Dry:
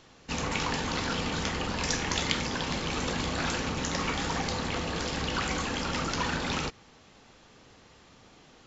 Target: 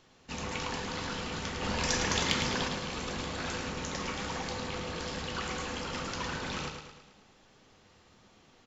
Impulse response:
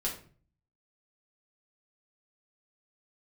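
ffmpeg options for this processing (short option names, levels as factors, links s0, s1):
-filter_complex "[0:a]asplit=2[s0][s1];[1:a]atrim=start_sample=2205[s2];[s1][s2]afir=irnorm=-1:irlink=0,volume=0.211[s3];[s0][s3]amix=inputs=2:normalize=0,asettb=1/sr,asplit=3[s4][s5][s6];[s4]atrim=end=1.624[s7];[s5]atrim=start=1.62:end=2.68,asetpts=PTS-STARTPTS,afade=t=in:d=0.004:c=qsin,afade=t=out:st=1.056:d=0.004:c=qsin,acontrast=45[s8];[s6]atrim=start=2.676[s9];[s7][s8]acrossfade=d=0.004:c1=hsin:c2=qsin[s10];[s10][s9]acrossfade=d=0.004:c1=qsin:c2=hsin,aecho=1:1:108|216|324|432|540|648:0.473|0.246|0.128|0.0665|0.0346|0.018,volume=0.398"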